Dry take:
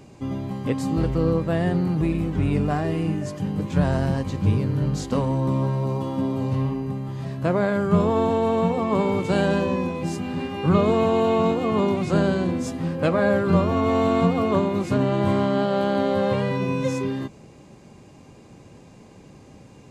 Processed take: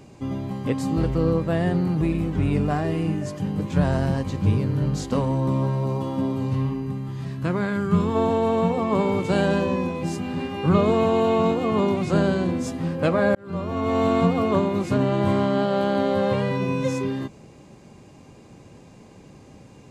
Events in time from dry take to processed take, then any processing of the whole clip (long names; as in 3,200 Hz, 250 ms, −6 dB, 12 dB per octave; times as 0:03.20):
0:06.32–0:08.14: parametric band 620 Hz −5 dB → −13.5 dB
0:13.35–0:14.05: fade in